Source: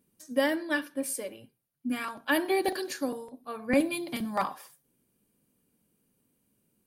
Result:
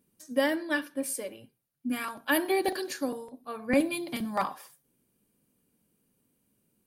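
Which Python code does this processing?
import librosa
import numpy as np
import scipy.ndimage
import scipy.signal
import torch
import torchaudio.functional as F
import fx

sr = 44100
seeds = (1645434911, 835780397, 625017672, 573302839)

y = fx.peak_eq(x, sr, hz=12000.0, db=6.5, octaves=0.77, at=(1.93, 2.52))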